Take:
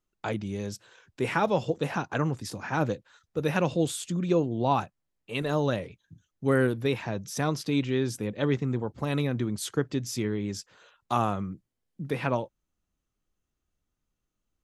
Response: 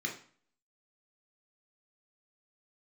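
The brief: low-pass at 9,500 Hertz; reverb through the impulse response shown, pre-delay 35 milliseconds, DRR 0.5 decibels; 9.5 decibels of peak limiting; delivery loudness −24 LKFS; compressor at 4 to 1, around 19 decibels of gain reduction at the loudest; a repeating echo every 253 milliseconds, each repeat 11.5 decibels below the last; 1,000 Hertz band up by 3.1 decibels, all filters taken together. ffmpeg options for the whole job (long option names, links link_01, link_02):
-filter_complex "[0:a]lowpass=9500,equalizer=frequency=1000:width_type=o:gain=4,acompressor=threshold=-42dB:ratio=4,alimiter=level_in=8.5dB:limit=-24dB:level=0:latency=1,volume=-8.5dB,aecho=1:1:253|506|759:0.266|0.0718|0.0194,asplit=2[link_01][link_02];[1:a]atrim=start_sample=2205,adelay=35[link_03];[link_02][link_03]afir=irnorm=-1:irlink=0,volume=-4dB[link_04];[link_01][link_04]amix=inputs=2:normalize=0,volume=18dB"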